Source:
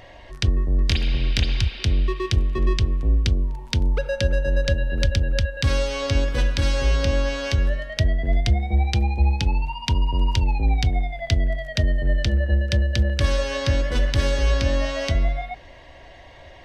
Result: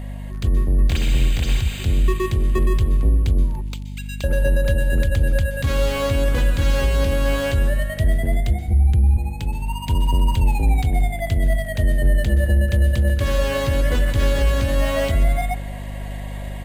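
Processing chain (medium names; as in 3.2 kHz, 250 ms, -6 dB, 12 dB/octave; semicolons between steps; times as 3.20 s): 3.61–4.24 s: steep high-pass 2.2 kHz 36 dB/octave; 8.68–9.17 s: tilt EQ -4.5 dB/octave; level rider gain up to 7 dB; peak limiter -10.5 dBFS, peak gain reduction 10 dB; hum 50 Hz, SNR 12 dB; careless resampling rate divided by 4×, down filtered, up hold; plate-style reverb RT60 1.4 s, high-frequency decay 0.45×, pre-delay 115 ms, DRR 15.5 dB; resampled via 32 kHz; slew-rate limiter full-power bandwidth 180 Hz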